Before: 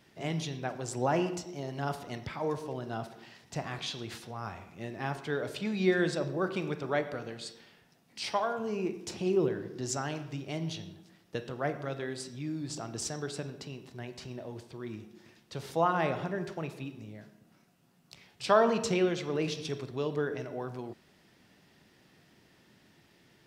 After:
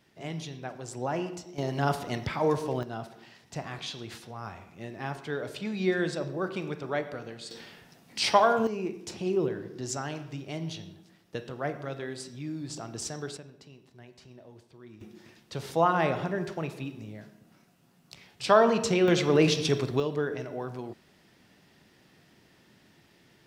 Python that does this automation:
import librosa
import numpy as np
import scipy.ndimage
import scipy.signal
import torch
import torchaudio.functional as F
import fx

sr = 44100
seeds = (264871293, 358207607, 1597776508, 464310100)

y = fx.gain(x, sr, db=fx.steps((0.0, -3.0), (1.58, 7.0), (2.83, -0.5), (7.51, 9.5), (8.67, 0.0), (13.37, -9.0), (15.01, 3.5), (19.08, 10.0), (20.0, 2.0)))